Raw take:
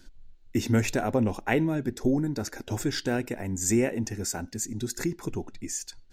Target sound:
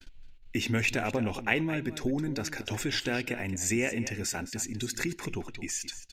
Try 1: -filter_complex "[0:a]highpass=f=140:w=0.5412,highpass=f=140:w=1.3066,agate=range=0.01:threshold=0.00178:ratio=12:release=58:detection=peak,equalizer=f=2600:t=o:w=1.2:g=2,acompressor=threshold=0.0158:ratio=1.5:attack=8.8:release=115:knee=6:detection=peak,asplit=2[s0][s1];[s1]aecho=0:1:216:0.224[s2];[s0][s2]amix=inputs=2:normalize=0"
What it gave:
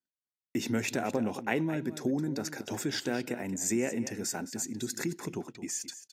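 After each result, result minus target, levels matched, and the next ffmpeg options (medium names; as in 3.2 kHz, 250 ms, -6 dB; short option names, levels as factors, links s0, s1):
2 kHz band -4.5 dB; 125 Hz band -2.5 dB
-filter_complex "[0:a]highpass=f=140:w=0.5412,highpass=f=140:w=1.3066,agate=range=0.01:threshold=0.00178:ratio=12:release=58:detection=peak,equalizer=f=2600:t=o:w=1.2:g=13.5,acompressor=threshold=0.0158:ratio=1.5:attack=8.8:release=115:knee=6:detection=peak,asplit=2[s0][s1];[s1]aecho=0:1:216:0.224[s2];[s0][s2]amix=inputs=2:normalize=0"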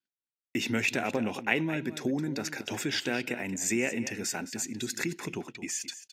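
125 Hz band -4.5 dB
-filter_complex "[0:a]agate=range=0.01:threshold=0.00178:ratio=12:release=58:detection=peak,equalizer=f=2600:t=o:w=1.2:g=13.5,acompressor=threshold=0.0158:ratio=1.5:attack=8.8:release=115:knee=6:detection=peak,asplit=2[s0][s1];[s1]aecho=0:1:216:0.224[s2];[s0][s2]amix=inputs=2:normalize=0"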